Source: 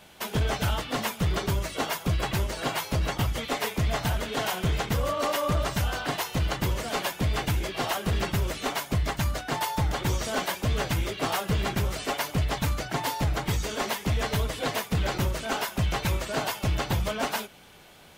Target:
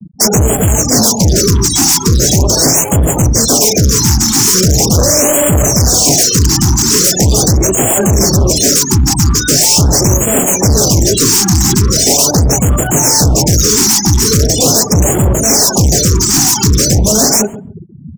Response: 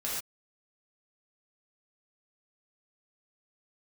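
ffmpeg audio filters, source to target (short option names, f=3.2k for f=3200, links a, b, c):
-filter_complex "[0:a]acrossover=split=3900[a][b];[b]acompressor=threshold=-47dB:ratio=4:attack=1:release=60[c];[a][c]amix=inputs=2:normalize=0,acrossover=split=770|4900[d][e][f];[e]aeval=exprs='(mod(59.6*val(0)+1,2)-1)/59.6':c=same[g];[d][g][f]amix=inputs=3:normalize=0,firequalizer=gain_entry='entry(240,0);entry(570,-5);entry(2600,-12);entry(5600,3);entry(9800,-2)':delay=0.05:min_phase=1,asplit=2[h][i];[i]acompressor=threshold=-35dB:ratio=12,volume=-2dB[j];[h][j]amix=inputs=2:normalize=0,highpass=f=68:w=0.5412,highpass=f=68:w=1.3066,bandreject=f=130:t=h:w=4,bandreject=f=260:t=h:w=4,bandreject=f=390:t=h:w=4,bandreject=f=520:t=h:w=4,bandreject=f=650:t=h:w=4,bandreject=f=780:t=h:w=4,bandreject=f=910:t=h:w=4,bandreject=f=1.04k:t=h:w=4,bandreject=f=1.17k:t=h:w=4,bandreject=f=1.3k:t=h:w=4,bandreject=f=1.43k:t=h:w=4,bandreject=f=1.56k:t=h:w=4,bandreject=f=1.69k:t=h:w=4,bandreject=f=1.82k:t=h:w=4,bandreject=f=1.95k:t=h:w=4,bandreject=f=2.08k:t=h:w=4,bandreject=f=2.21k:t=h:w=4,bandreject=f=2.34k:t=h:w=4,bandreject=f=2.47k:t=h:w=4,bandreject=f=2.6k:t=h:w=4,bandreject=f=2.73k:t=h:w=4,bandreject=f=2.86k:t=h:w=4,bandreject=f=2.99k:t=h:w=4,bandreject=f=3.12k:t=h:w=4,bandreject=f=3.25k:t=h:w=4,bandreject=f=3.38k:t=h:w=4,bandreject=f=3.51k:t=h:w=4,bandreject=f=3.64k:t=h:w=4,afftfilt=real='re*gte(hypot(re,im),0.0141)':imag='im*gte(hypot(re,im),0.0141)':win_size=1024:overlap=0.75,bass=f=250:g=-3,treble=f=4k:g=14,asoftclip=type=hard:threshold=-33dB,asplit=2[k][l];[l]adelay=135,lowpass=f=890:p=1,volume=-17dB,asplit=2[m][n];[n]adelay=135,lowpass=f=890:p=1,volume=0.18[o];[k][m][o]amix=inputs=3:normalize=0,alimiter=level_in=35.5dB:limit=-1dB:release=50:level=0:latency=1,afftfilt=real='re*(1-between(b*sr/1024,510*pow(4900/510,0.5+0.5*sin(2*PI*0.41*pts/sr))/1.41,510*pow(4900/510,0.5+0.5*sin(2*PI*0.41*pts/sr))*1.41))':imag='im*(1-between(b*sr/1024,510*pow(4900/510,0.5+0.5*sin(2*PI*0.41*pts/sr))/1.41,510*pow(4900/510,0.5+0.5*sin(2*PI*0.41*pts/sr))*1.41))':win_size=1024:overlap=0.75,volume=-5dB"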